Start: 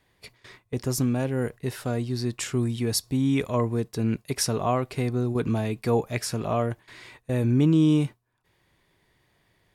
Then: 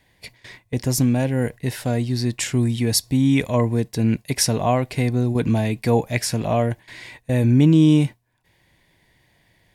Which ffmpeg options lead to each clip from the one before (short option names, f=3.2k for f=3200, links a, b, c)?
-af "equalizer=f=400:t=o:w=0.33:g=-7,equalizer=f=1.25k:t=o:w=0.33:g=-12,equalizer=f=2k:t=o:w=0.33:g=3,volume=6.5dB"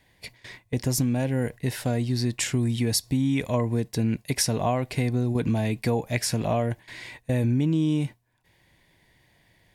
-af "acompressor=threshold=-19dB:ratio=5,volume=-1.5dB"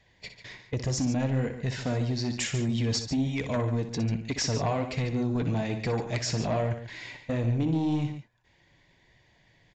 -af "flanger=delay=1.6:depth=5.6:regen=-44:speed=1.2:shape=sinusoidal,aresample=16000,aeval=exprs='0.188*sin(PI/2*2.24*val(0)/0.188)':c=same,aresample=44100,aecho=1:1:61.22|142.9:0.316|0.282,volume=-8.5dB"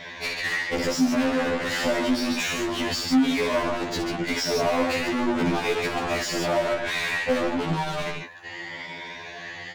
-filter_complex "[0:a]afftfilt=real='re*pow(10,8/40*sin(2*PI*(1.6*log(max(b,1)*sr/1024/100)/log(2)-(0.88)*(pts-256)/sr)))':imag='im*pow(10,8/40*sin(2*PI*(1.6*log(max(b,1)*sr/1024/100)/log(2)-(0.88)*(pts-256)/sr)))':win_size=1024:overlap=0.75,asplit=2[a][b];[b]highpass=f=720:p=1,volume=37dB,asoftclip=type=tanh:threshold=-17dB[c];[a][c]amix=inputs=2:normalize=0,lowpass=f=2.5k:p=1,volume=-6dB,afftfilt=real='re*2*eq(mod(b,4),0)':imag='im*2*eq(mod(b,4),0)':win_size=2048:overlap=0.75,volume=2dB"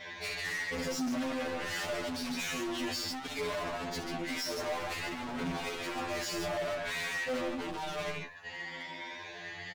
-filter_complex "[0:a]volume=27.5dB,asoftclip=hard,volume=-27.5dB,asplit=2[a][b];[b]adelay=6.1,afreqshift=-0.65[c];[a][c]amix=inputs=2:normalize=1,volume=-3dB"